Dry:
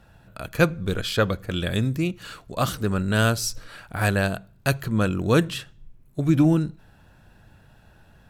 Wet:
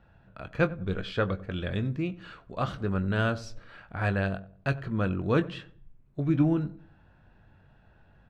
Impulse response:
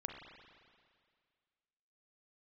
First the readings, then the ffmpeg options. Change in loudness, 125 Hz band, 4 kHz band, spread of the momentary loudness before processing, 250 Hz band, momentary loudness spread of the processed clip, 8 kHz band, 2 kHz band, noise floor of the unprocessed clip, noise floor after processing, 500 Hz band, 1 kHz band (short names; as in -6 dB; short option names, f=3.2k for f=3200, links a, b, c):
-6.0 dB, -5.5 dB, -11.5 dB, 14 LU, -5.5 dB, 15 LU, under -20 dB, -6.5 dB, -54 dBFS, -60 dBFS, -5.5 dB, -6.0 dB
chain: -filter_complex "[0:a]lowpass=2.7k,asplit=2[a][b];[b]adelay=21,volume=-11dB[c];[a][c]amix=inputs=2:normalize=0,asplit=2[d][e];[e]adelay=94,lowpass=f=920:p=1,volume=-16dB,asplit=2[f][g];[g]adelay=94,lowpass=f=920:p=1,volume=0.4,asplit=2[h][i];[i]adelay=94,lowpass=f=920:p=1,volume=0.4,asplit=2[j][k];[k]adelay=94,lowpass=f=920:p=1,volume=0.4[l];[d][f][h][j][l]amix=inputs=5:normalize=0,volume=-6dB"